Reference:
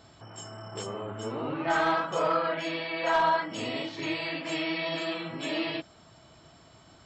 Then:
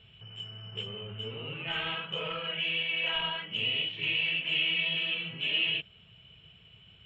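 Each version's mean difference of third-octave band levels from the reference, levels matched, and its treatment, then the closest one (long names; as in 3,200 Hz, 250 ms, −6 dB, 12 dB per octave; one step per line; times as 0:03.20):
7.5 dB: drawn EQ curve 110 Hz 0 dB, 200 Hz −3 dB, 300 Hz −21 dB, 440 Hz −4 dB, 620 Hz −17 dB, 1,100 Hz −15 dB, 2,000 Hz −5 dB, 2,900 Hz +14 dB, 4,600 Hz −23 dB, 9,800 Hz −26 dB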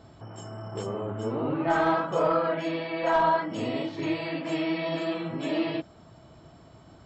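3.5 dB: tilt shelving filter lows +6 dB, about 1,200 Hz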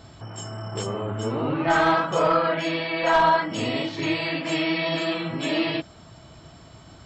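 1.5 dB: low-shelf EQ 190 Hz +8 dB
level +5.5 dB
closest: third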